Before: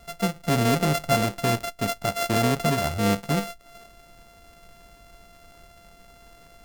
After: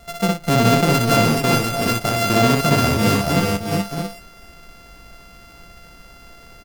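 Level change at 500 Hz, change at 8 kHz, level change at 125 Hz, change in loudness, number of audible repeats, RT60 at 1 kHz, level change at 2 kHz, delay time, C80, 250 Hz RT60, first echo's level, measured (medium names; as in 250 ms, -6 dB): +6.5 dB, +7.0 dB, +7.5 dB, +6.5 dB, 5, no reverb, +7.5 dB, 61 ms, no reverb, no reverb, -3.5 dB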